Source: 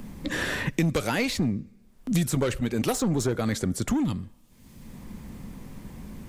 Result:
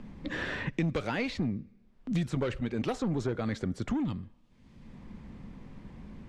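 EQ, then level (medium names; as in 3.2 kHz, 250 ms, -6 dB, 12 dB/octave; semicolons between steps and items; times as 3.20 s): low-pass 3.6 kHz 12 dB/octave; -5.5 dB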